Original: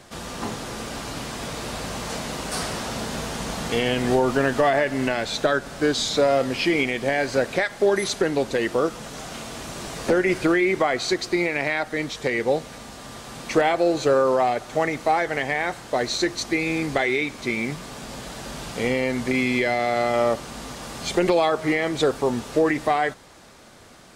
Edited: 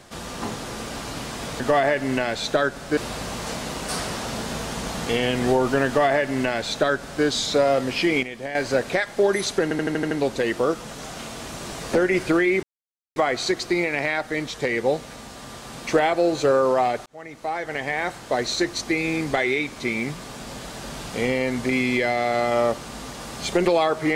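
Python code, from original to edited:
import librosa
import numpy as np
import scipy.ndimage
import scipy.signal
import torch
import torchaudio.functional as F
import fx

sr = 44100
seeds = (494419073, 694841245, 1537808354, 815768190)

y = fx.edit(x, sr, fx.duplicate(start_s=4.5, length_s=1.37, to_s=1.6),
    fx.clip_gain(start_s=6.86, length_s=0.32, db=-8.5),
    fx.stutter(start_s=8.26, slice_s=0.08, count=7),
    fx.insert_silence(at_s=10.78, length_s=0.53),
    fx.fade_in_span(start_s=14.68, length_s=1.02), tone=tone)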